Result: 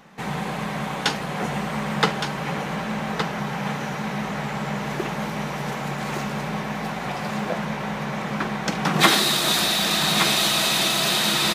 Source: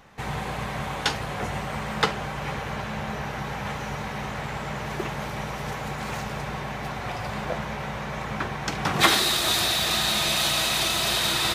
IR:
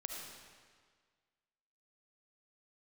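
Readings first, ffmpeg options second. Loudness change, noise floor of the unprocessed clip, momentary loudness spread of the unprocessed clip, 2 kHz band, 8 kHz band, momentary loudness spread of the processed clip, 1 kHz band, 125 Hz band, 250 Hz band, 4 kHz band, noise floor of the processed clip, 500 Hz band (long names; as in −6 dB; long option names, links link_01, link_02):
+3.0 dB, −33 dBFS, 11 LU, +2.5 dB, +2.5 dB, 10 LU, +3.0 dB, +3.0 dB, +7.0 dB, +2.5 dB, −30 dBFS, +3.5 dB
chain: -af "lowshelf=frequency=130:width_type=q:width=3:gain=-9.5,aecho=1:1:1166:0.447,volume=2dB"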